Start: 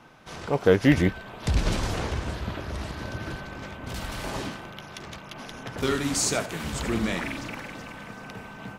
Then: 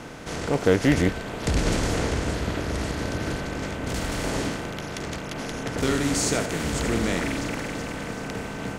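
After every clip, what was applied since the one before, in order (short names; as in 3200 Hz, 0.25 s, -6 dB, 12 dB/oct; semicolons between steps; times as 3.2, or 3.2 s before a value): per-bin compression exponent 0.6; gain -2.5 dB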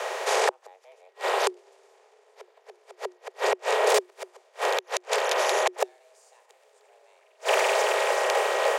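flipped gate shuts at -18 dBFS, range -42 dB; frequency shift +360 Hz; gain +8 dB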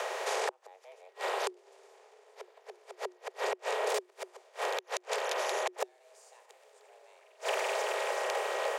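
compressor 2:1, threshold -37 dBFS, peak gain reduction 11 dB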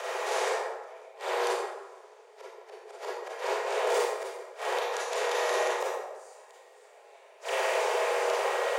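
reverb RT60 1.2 s, pre-delay 27 ms, DRR -7 dB; gain -3.5 dB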